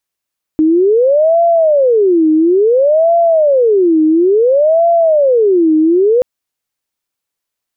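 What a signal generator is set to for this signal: siren wail 311–681 Hz 0.58/s sine -6.5 dBFS 5.63 s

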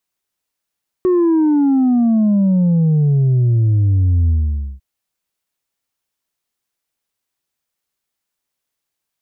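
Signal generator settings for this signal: sub drop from 370 Hz, over 3.75 s, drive 2.5 dB, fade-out 0.51 s, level -11 dB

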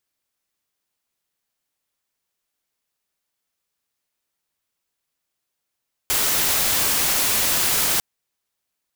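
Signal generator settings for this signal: noise white, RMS -20 dBFS 1.90 s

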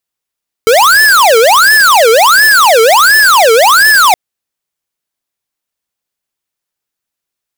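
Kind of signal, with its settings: siren wail 442–1750 Hz 1.4/s square -5.5 dBFS 3.47 s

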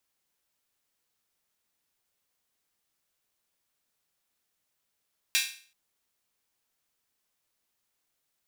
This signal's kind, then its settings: open hi-hat length 0.38 s, high-pass 2400 Hz, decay 0.44 s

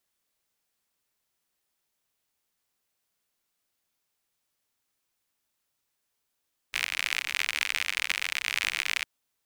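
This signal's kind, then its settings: rain from filtered ticks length 2.31 s, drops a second 66, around 2300 Hz, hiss -30 dB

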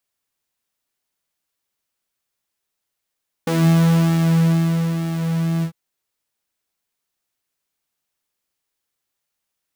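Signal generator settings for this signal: synth patch with pulse-width modulation E3, detune 10 cents, noise -16 dB, filter highpass, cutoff 110 Hz, Q 2.6, filter envelope 1.5 oct, filter decay 0.20 s, filter sustain 35%, attack 5.5 ms, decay 1.46 s, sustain -9.5 dB, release 0.09 s, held 2.16 s, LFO 1.1 Hz, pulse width 49%, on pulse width 17%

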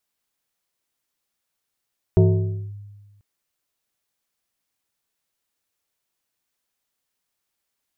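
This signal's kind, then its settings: FM tone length 1.04 s, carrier 102 Hz, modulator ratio 2.65, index 1.1, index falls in 0.56 s linear, decay 1.41 s, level -9 dB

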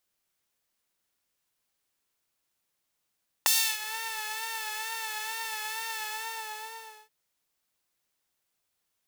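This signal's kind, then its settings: synth patch with vibrato A5, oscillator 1 saw, sub -8.5 dB, noise -8 dB, filter highpass, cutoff 480 Hz, Q 0.8, filter envelope 3.5 oct, filter decay 0.45 s, attack 2 ms, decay 0.31 s, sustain -18 dB, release 1.09 s, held 2.54 s, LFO 2.2 Hz, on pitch 46 cents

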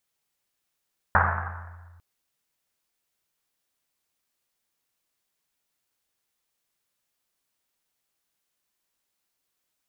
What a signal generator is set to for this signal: Risset drum length 0.85 s, pitch 86 Hz, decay 2.04 s, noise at 1200 Hz, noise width 980 Hz, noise 60%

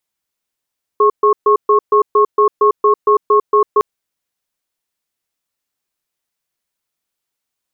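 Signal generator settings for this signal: cadence 418 Hz, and 1090 Hz, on 0.10 s, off 0.13 s, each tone -10 dBFS 2.81 s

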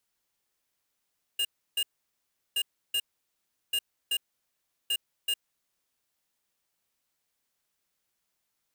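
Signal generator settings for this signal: beep pattern square 2830 Hz, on 0.06 s, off 0.32 s, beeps 2, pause 0.73 s, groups 4, -27.5 dBFS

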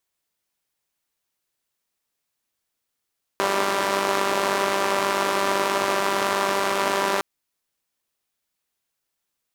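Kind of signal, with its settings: four-cylinder engine model, steady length 3.81 s, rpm 5900, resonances 380/600/960 Hz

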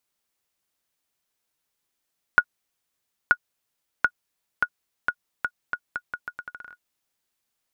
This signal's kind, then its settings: bouncing ball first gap 0.93 s, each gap 0.79, 1450 Hz, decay 61 ms -3.5 dBFS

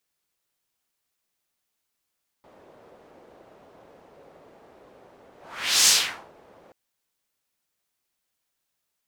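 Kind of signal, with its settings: whoosh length 4.28 s, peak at 3.43, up 0.54 s, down 0.47 s, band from 540 Hz, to 6100 Hz, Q 1.5, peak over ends 36 dB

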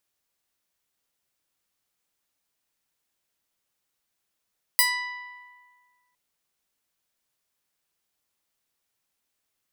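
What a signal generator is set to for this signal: plucked string B5, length 1.36 s, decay 1.74 s, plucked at 0.26, bright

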